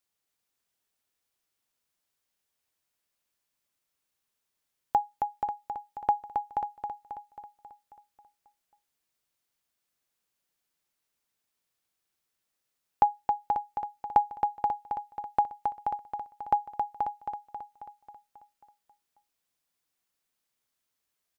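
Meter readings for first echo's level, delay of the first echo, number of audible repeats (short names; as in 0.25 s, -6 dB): -5.5 dB, 0.27 s, 7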